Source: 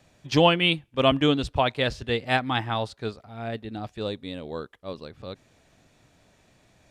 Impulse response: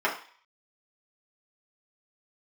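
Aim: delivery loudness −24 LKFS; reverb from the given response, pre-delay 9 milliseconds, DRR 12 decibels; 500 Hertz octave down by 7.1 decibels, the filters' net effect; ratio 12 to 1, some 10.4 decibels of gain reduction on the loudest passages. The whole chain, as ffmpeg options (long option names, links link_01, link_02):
-filter_complex "[0:a]equalizer=frequency=500:width_type=o:gain=-9,acompressor=threshold=-27dB:ratio=12,asplit=2[link_01][link_02];[1:a]atrim=start_sample=2205,adelay=9[link_03];[link_02][link_03]afir=irnorm=-1:irlink=0,volume=-26dB[link_04];[link_01][link_04]amix=inputs=2:normalize=0,volume=10.5dB"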